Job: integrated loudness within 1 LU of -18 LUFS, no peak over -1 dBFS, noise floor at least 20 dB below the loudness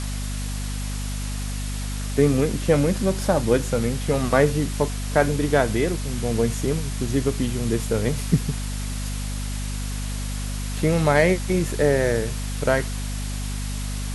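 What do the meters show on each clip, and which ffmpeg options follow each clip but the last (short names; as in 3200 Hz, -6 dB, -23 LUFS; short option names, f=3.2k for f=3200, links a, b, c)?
hum 50 Hz; harmonics up to 250 Hz; hum level -26 dBFS; noise floor -28 dBFS; noise floor target -44 dBFS; loudness -23.5 LUFS; peak -4.0 dBFS; loudness target -18.0 LUFS
-> -af "bandreject=f=50:t=h:w=6,bandreject=f=100:t=h:w=6,bandreject=f=150:t=h:w=6,bandreject=f=200:t=h:w=6,bandreject=f=250:t=h:w=6"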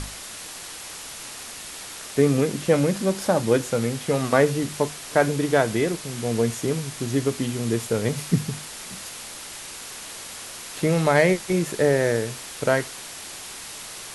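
hum none; noise floor -38 dBFS; noise floor target -44 dBFS
-> -af "afftdn=nr=6:nf=-38"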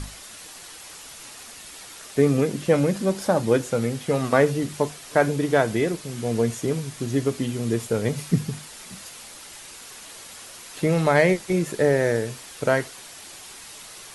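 noise floor -42 dBFS; noise floor target -43 dBFS
-> -af "afftdn=nr=6:nf=-42"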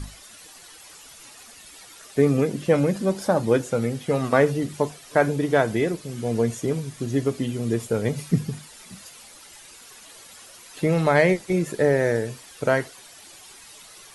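noise floor -47 dBFS; loudness -23.5 LUFS; peak -4.0 dBFS; loudness target -18.0 LUFS
-> -af "volume=5.5dB,alimiter=limit=-1dB:level=0:latency=1"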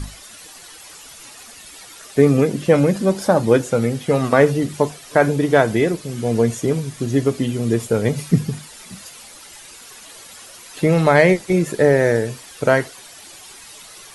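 loudness -18.0 LUFS; peak -1.0 dBFS; noise floor -41 dBFS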